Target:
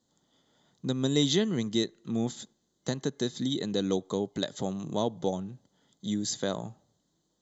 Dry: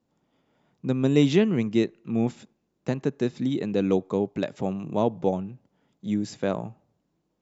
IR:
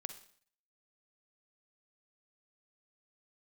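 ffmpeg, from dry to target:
-filter_complex "[0:a]equalizer=frequency=4000:width_type=o:width=1.1:gain=14.5,asplit=2[link_01][link_02];[link_02]acompressor=threshold=-28dB:ratio=6,volume=2dB[link_03];[link_01][link_03]amix=inputs=2:normalize=0,superequalizer=12b=0.251:15b=3.16,volume=-9dB"

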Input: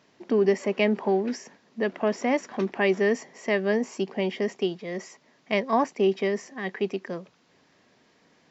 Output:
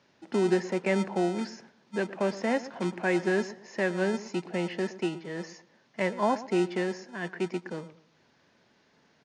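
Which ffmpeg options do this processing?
ffmpeg -i in.wav -filter_complex "[0:a]acrossover=split=300|3100[link_01][link_02][link_03];[link_01]acrusher=samples=36:mix=1:aa=0.000001[link_04];[link_03]aeval=exprs='0.0112*(abs(mod(val(0)/0.0112+3,4)-2)-1)':channel_layout=same[link_05];[link_04][link_02][link_05]amix=inputs=3:normalize=0,aresample=22050,aresample=44100,asetrate=40572,aresample=44100,asplit=2[link_06][link_07];[link_07]adelay=117,lowpass=frequency=1400:poles=1,volume=-15dB,asplit=2[link_08][link_09];[link_09]adelay=117,lowpass=frequency=1400:poles=1,volume=0.29,asplit=2[link_10][link_11];[link_11]adelay=117,lowpass=frequency=1400:poles=1,volume=0.29[link_12];[link_06][link_08][link_10][link_12]amix=inputs=4:normalize=0,volume=-3dB" out.wav

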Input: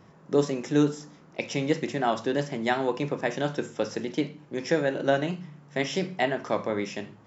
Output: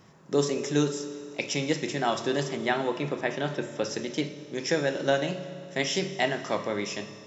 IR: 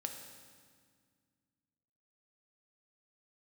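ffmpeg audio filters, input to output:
-filter_complex "[0:a]asettb=1/sr,asplit=3[link_01][link_02][link_03];[link_01]atrim=end=2.564[link_04];[link_02]atrim=start=2.56:end=3.84,asetpts=PTS-STARTPTS,afade=type=in:duration=0.004:curve=qsin,afade=type=out:start_time=1.276:duration=0.004:curve=qsin,acrossover=split=3700[link_05][link_06];[link_06]acompressor=threshold=-59dB:ratio=4:attack=1:release=60[link_07];[link_05][link_07]amix=inputs=2:normalize=0[link_08];[link_03]atrim=start=3.836[link_09];[link_04][link_08]acrossfade=duration=0.004:curve1=hsin:curve2=qsin[link_10];[link_10][link_09]acrossfade=duration=0.004:curve1=qsin:curve2=hsin,highshelf=frequency=3100:gain=10.5,asplit=2[link_11][link_12];[1:a]atrim=start_sample=2205,asetrate=31311,aresample=44100[link_13];[link_12][link_13]afir=irnorm=-1:irlink=0,volume=-3dB[link_14];[link_11][link_14]amix=inputs=2:normalize=0,volume=-6.5dB"

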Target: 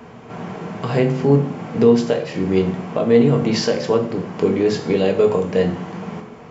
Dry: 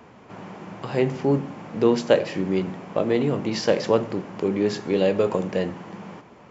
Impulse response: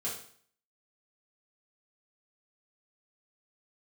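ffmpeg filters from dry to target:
-filter_complex "[0:a]alimiter=limit=-14dB:level=0:latency=1:release=480,asplit=2[link_01][link_02];[1:a]atrim=start_sample=2205,lowshelf=frequency=240:gain=6.5[link_03];[link_02][link_03]afir=irnorm=-1:irlink=0,volume=-3.5dB[link_04];[link_01][link_04]amix=inputs=2:normalize=0,volume=3dB"

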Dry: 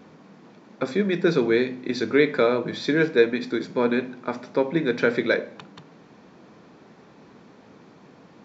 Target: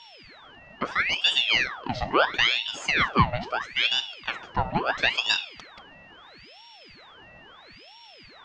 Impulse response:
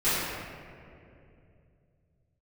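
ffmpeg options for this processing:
-af "lowpass=5000,aeval=exprs='val(0)+0.00501*sin(2*PI*2300*n/s)':channel_layout=same,aeval=exprs='val(0)*sin(2*PI*1800*n/s+1800*0.8/0.75*sin(2*PI*0.75*n/s))':channel_layout=same"

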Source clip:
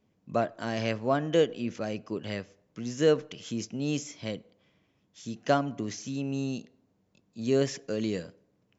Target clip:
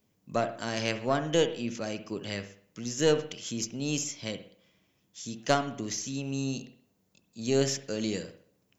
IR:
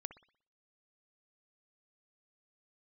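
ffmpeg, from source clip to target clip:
-filter_complex "[0:a]aemphasis=mode=production:type=75kf,aeval=exprs='0.422*(cos(1*acos(clip(val(0)/0.422,-1,1)))-cos(1*PI/2))+0.119*(cos(2*acos(clip(val(0)/0.422,-1,1)))-cos(2*PI/2))+0.00944*(cos(4*acos(clip(val(0)/0.422,-1,1)))-cos(4*PI/2))':channel_layout=same[link_01];[1:a]atrim=start_sample=2205[link_02];[link_01][link_02]afir=irnorm=-1:irlink=0,volume=2dB"

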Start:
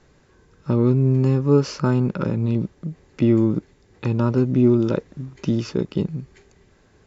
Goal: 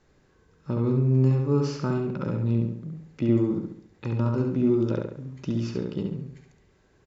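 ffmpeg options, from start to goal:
ffmpeg -i in.wav -filter_complex "[0:a]asplit=2[link_01][link_02];[link_02]adelay=69,lowpass=frequency=4500:poles=1,volume=-3dB,asplit=2[link_03][link_04];[link_04]adelay=69,lowpass=frequency=4500:poles=1,volume=0.47,asplit=2[link_05][link_06];[link_06]adelay=69,lowpass=frequency=4500:poles=1,volume=0.47,asplit=2[link_07][link_08];[link_08]adelay=69,lowpass=frequency=4500:poles=1,volume=0.47,asplit=2[link_09][link_10];[link_10]adelay=69,lowpass=frequency=4500:poles=1,volume=0.47,asplit=2[link_11][link_12];[link_12]adelay=69,lowpass=frequency=4500:poles=1,volume=0.47[link_13];[link_01][link_03][link_05][link_07][link_09][link_11][link_13]amix=inputs=7:normalize=0,volume=-8dB" out.wav

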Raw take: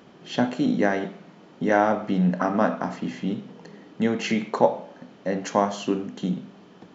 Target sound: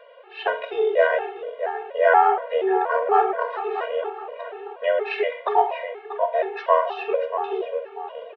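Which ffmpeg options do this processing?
ffmpeg -i in.wav -filter_complex "[0:a]asetrate=36603,aresample=44100,asplit=2[link_01][link_02];[link_02]adelay=638,lowpass=frequency=2400:poles=1,volume=-9dB,asplit=2[link_03][link_04];[link_04]adelay=638,lowpass=frequency=2400:poles=1,volume=0.43,asplit=2[link_05][link_06];[link_06]adelay=638,lowpass=frequency=2400:poles=1,volume=0.43,asplit=2[link_07][link_08];[link_08]adelay=638,lowpass=frequency=2400:poles=1,volume=0.43,asplit=2[link_09][link_10];[link_10]adelay=638,lowpass=frequency=2400:poles=1,volume=0.43[link_11];[link_01][link_03][link_05][link_07][link_09][link_11]amix=inputs=6:normalize=0,highpass=frequency=190:width_type=q:width=0.5412,highpass=frequency=190:width_type=q:width=1.307,lowpass=frequency=3200:width_type=q:width=0.5176,lowpass=frequency=3200:width_type=q:width=0.7071,lowpass=frequency=3200:width_type=q:width=1.932,afreqshift=230,afftfilt=real='re*gt(sin(2*PI*2.1*pts/sr)*(1-2*mod(floor(b*sr/1024/230),2)),0)':imag='im*gt(sin(2*PI*2.1*pts/sr)*(1-2*mod(floor(b*sr/1024/230),2)),0)':win_size=1024:overlap=0.75,volume=6.5dB" out.wav

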